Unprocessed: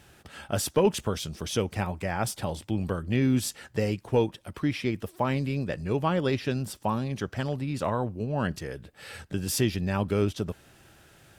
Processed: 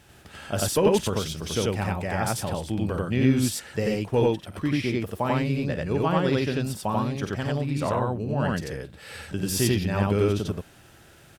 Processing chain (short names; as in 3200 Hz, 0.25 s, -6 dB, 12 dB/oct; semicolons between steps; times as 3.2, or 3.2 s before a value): loudspeakers at several distances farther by 17 m -11 dB, 31 m 0 dB